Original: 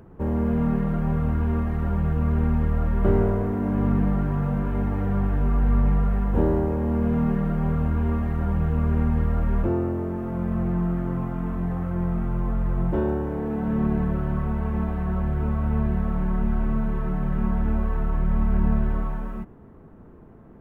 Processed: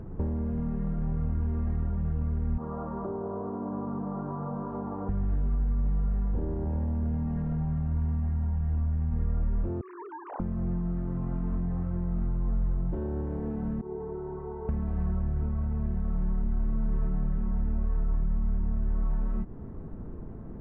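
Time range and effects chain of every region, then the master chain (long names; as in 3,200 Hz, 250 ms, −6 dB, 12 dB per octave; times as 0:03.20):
0:02.58–0:05.09: Bessel high-pass filter 330 Hz + high shelf with overshoot 1,500 Hz −10.5 dB, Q 3
0:06.64–0:09.11: double-tracking delay 14 ms −4.5 dB + single-tap delay 385 ms −6 dB
0:09.81–0:10.40: three sine waves on the formant tracks + high-pass filter 660 Hz 24 dB per octave
0:13.81–0:14.69: pair of resonant band-passes 560 Hz, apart 0.91 octaves + comb filter 2.1 ms
whole clip: brickwall limiter −20.5 dBFS; downward compressor, threshold −35 dBFS; spectral tilt −2.5 dB per octave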